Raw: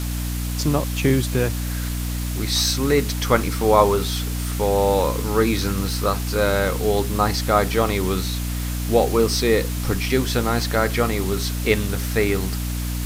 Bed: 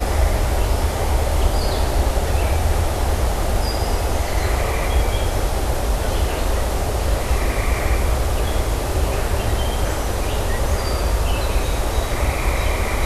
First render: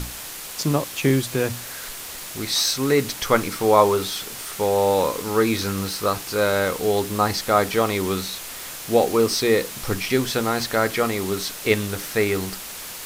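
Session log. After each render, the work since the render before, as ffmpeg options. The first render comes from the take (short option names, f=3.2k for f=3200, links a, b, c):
-af "bandreject=f=60:t=h:w=6,bandreject=f=120:t=h:w=6,bandreject=f=180:t=h:w=6,bandreject=f=240:t=h:w=6,bandreject=f=300:t=h:w=6"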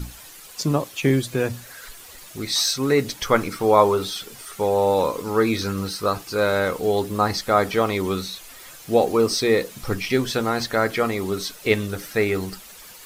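-af "afftdn=nr=11:nf=-35"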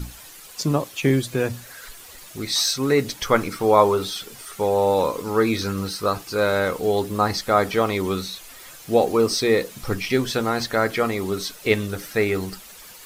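-af anull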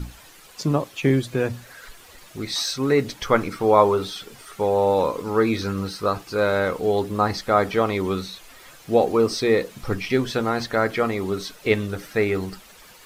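-af "highshelf=f=5k:g=-9.5"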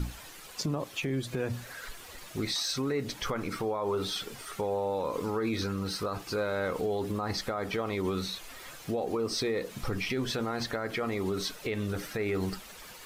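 -af "acompressor=threshold=-23dB:ratio=6,alimiter=limit=-22.5dB:level=0:latency=1:release=47"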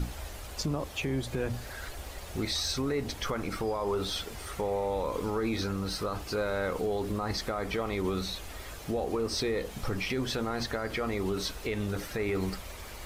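-filter_complex "[1:a]volume=-25dB[a];[0:a][a]amix=inputs=2:normalize=0"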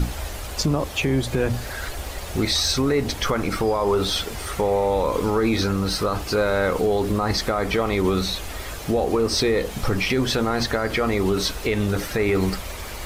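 -af "volume=10dB"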